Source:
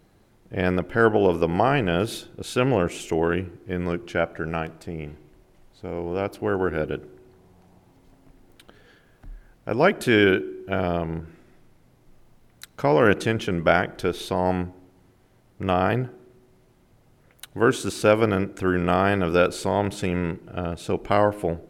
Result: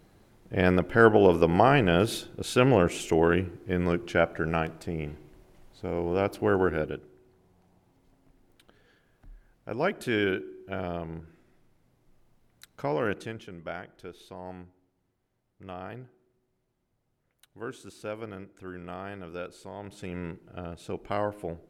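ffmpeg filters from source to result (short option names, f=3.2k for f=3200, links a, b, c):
-af "volume=8.5dB,afade=t=out:st=6.58:d=0.43:silence=0.354813,afade=t=out:st=12.83:d=0.68:silence=0.334965,afade=t=in:st=19.79:d=0.46:silence=0.375837"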